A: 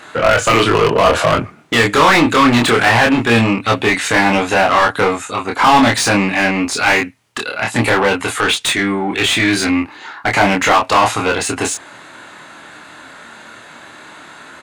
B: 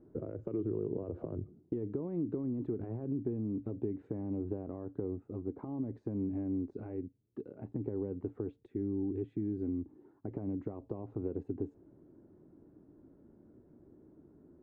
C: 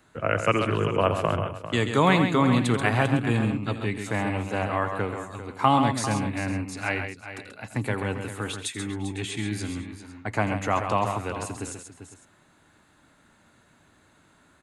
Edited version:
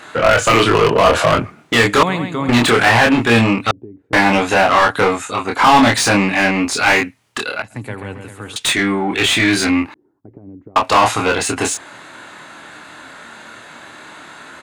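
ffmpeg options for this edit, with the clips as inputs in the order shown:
-filter_complex "[2:a]asplit=2[a][b];[1:a]asplit=2[c][d];[0:a]asplit=5[e][f][g][h][i];[e]atrim=end=2.032[j];[a]atrim=start=2.028:end=2.492[k];[f]atrim=start=2.488:end=3.712[l];[c]atrim=start=3.708:end=4.132[m];[g]atrim=start=4.128:end=7.622[n];[b]atrim=start=7.618:end=8.562[o];[h]atrim=start=8.558:end=9.942[p];[d]atrim=start=9.938:end=10.762[q];[i]atrim=start=10.758[r];[j][k]acrossfade=d=0.004:c1=hsin:c2=hsin[s];[s][l]acrossfade=d=0.004:c1=hsin:c2=hsin[t];[t][m]acrossfade=d=0.004:c1=hsin:c2=hsin[u];[u][n]acrossfade=d=0.004:c1=hsin:c2=hsin[v];[v][o]acrossfade=d=0.004:c1=hsin:c2=hsin[w];[w][p]acrossfade=d=0.004:c1=hsin:c2=hsin[x];[x][q]acrossfade=d=0.004:c1=hsin:c2=hsin[y];[y][r]acrossfade=d=0.004:c1=hsin:c2=hsin"

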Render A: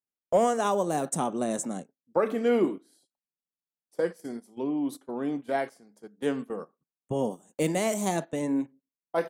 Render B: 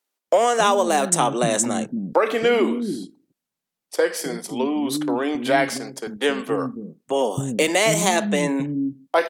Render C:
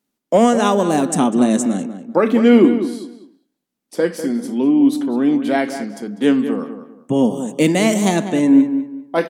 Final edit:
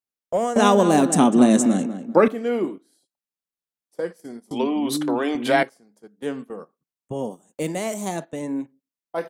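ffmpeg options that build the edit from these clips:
-filter_complex "[0:a]asplit=3[a][b][c];[a]atrim=end=0.562[d];[2:a]atrim=start=0.558:end=2.282[e];[b]atrim=start=2.278:end=4.512[f];[1:a]atrim=start=4.508:end=5.632[g];[c]atrim=start=5.628[h];[d][e]acrossfade=d=0.004:c1=hsin:c2=hsin[i];[i][f]acrossfade=d=0.004:c1=hsin:c2=hsin[j];[j][g]acrossfade=d=0.004:c1=hsin:c2=hsin[k];[k][h]acrossfade=d=0.004:c1=hsin:c2=hsin"

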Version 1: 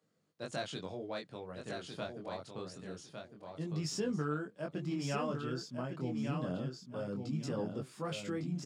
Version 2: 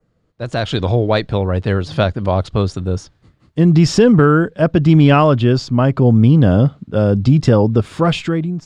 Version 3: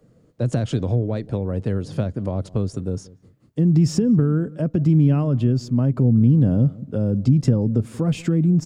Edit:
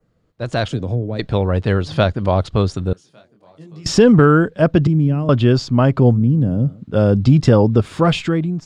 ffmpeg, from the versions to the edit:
-filter_complex "[2:a]asplit=3[a][b][c];[1:a]asplit=5[d][e][f][g][h];[d]atrim=end=0.682[i];[a]atrim=start=0.678:end=1.192[j];[e]atrim=start=1.188:end=2.932[k];[0:a]atrim=start=2.928:end=3.862[l];[f]atrim=start=3.858:end=4.872[m];[b]atrim=start=4.868:end=5.292[n];[g]atrim=start=5.288:end=6.19[o];[c]atrim=start=6.09:end=6.85[p];[h]atrim=start=6.75[q];[i][j]acrossfade=d=0.004:c1=hsin:c2=hsin[r];[r][k]acrossfade=d=0.004:c1=hsin:c2=hsin[s];[s][l]acrossfade=d=0.004:c1=hsin:c2=hsin[t];[t][m]acrossfade=d=0.004:c1=hsin:c2=hsin[u];[u][n]acrossfade=d=0.004:c1=hsin:c2=hsin[v];[v][o]acrossfade=d=0.004:c1=hsin:c2=hsin[w];[w][p]acrossfade=d=0.1:c1=tri:c2=tri[x];[x][q]acrossfade=d=0.1:c1=tri:c2=tri"

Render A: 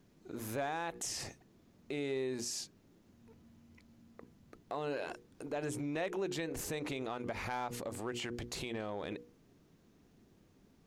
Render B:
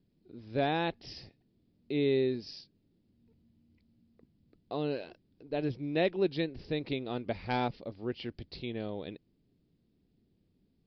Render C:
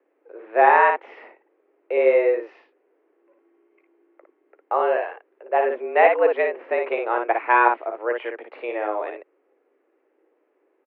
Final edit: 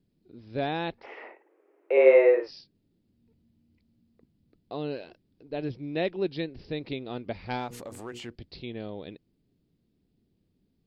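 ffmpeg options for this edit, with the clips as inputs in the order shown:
-filter_complex "[1:a]asplit=3[a][b][c];[a]atrim=end=1.07,asetpts=PTS-STARTPTS[d];[2:a]atrim=start=0.97:end=2.52,asetpts=PTS-STARTPTS[e];[b]atrim=start=2.42:end=7.76,asetpts=PTS-STARTPTS[f];[0:a]atrim=start=7.52:end=8.36,asetpts=PTS-STARTPTS[g];[c]atrim=start=8.12,asetpts=PTS-STARTPTS[h];[d][e]acrossfade=d=0.1:c1=tri:c2=tri[i];[i][f]acrossfade=d=0.1:c1=tri:c2=tri[j];[j][g]acrossfade=d=0.24:c1=tri:c2=tri[k];[k][h]acrossfade=d=0.24:c1=tri:c2=tri"

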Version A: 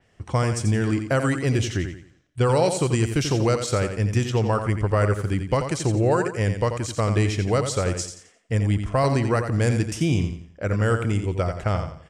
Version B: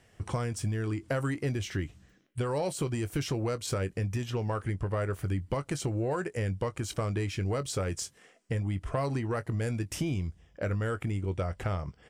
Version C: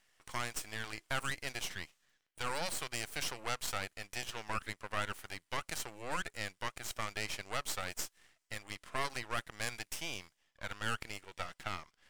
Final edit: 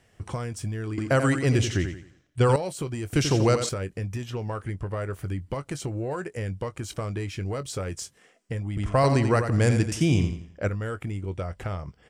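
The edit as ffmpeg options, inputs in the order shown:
-filter_complex "[0:a]asplit=3[a][b][c];[1:a]asplit=4[d][e][f][g];[d]atrim=end=0.982[h];[a]atrim=start=0.978:end=2.562[i];[e]atrim=start=2.558:end=3.132[j];[b]atrim=start=3.128:end=3.692[k];[f]atrim=start=3.688:end=8.772[l];[c]atrim=start=8.768:end=10.692[m];[g]atrim=start=10.688[n];[h][i]acrossfade=d=0.004:c1=hsin:c2=hsin[o];[o][j]acrossfade=d=0.004:c1=hsin:c2=hsin[p];[p][k]acrossfade=d=0.004:c1=hsin:c2=hsin[q];[q][l]acrossfade=d=0.004:c1=hsin:c2=hsin[r];[r][m]acrossfade=d=0.004:c1=hsin:c2=hsin[s];[s][n]acrossfade=d=0.004:c1=hsin:c2=hsin"

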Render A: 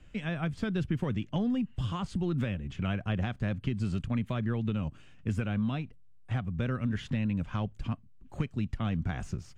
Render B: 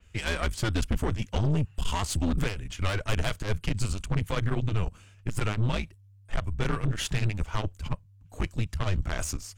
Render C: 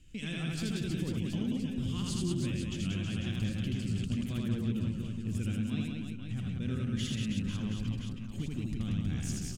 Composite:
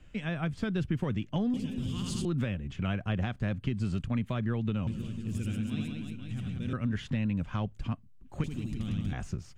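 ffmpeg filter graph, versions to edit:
-filter_complex "[2:a]asplit=3[a][b][c];[0:a]asplit=4[d][e][f][g];[d]atrim=end=1.542[h];[a]atrim=start=1.538:end=2.252[i];[e]atrim=start=2.248:end=4.872[j];[b]atrim=start=4.868:end=6.732[k];[f]atrim=start=6.728:end=8.442[l];[c]atrim=start=8.438:end=9.132[m];[g]atrim=start=9.128[n];[h][i]acrossfade=d=0.004:c1=hsin:c2=hsin[o];[o][j]acrossfade=d=0.004:c1=hsin:c2=hsin[p];[p][k]acrossfade=d=0.004:c1=hsin:c2=hsin[q];[q][l]acrossfade=d=0.004:c1=hsin:c2=hsin[r];[r][m]acrossfade=d=0.004:c1=hsin:c2=hsin[s];[s][n]acrossfade=d=0.004:c1=hsin:c2=hsin"

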